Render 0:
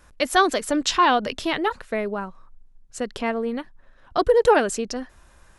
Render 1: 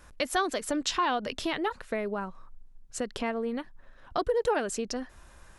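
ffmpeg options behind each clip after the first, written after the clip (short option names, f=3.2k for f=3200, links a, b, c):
-af "acompressor=threshold=-32dB:ratio=2"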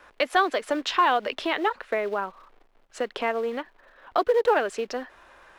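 -filter_complex "[0:a]acrusher=bits=5:mode=log:mix=0:aa=0.000001,acrossover=split=330 3800:gain=0.1 1 0.126[a][b][c];[a][b][c]amix=inputs=3:normalize=0,volume=7dB"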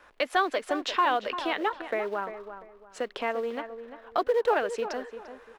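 -filter_complex "[0:a]asplit=2[a][b];[b]adelay=345,lowpass=f=1.8k:p=1,volume=-10dB,asplit=2[c][d];[d]adelay=345,lowpass=f=1.8k:p=1,volume=0.3,asplit=2[e][f];[f]adelay=345,lowpass=f=1.8k:p=1,volume=0.3[g];[a][c][e][g]amix=inputs=4:normalize=0,volume=-3.5dB"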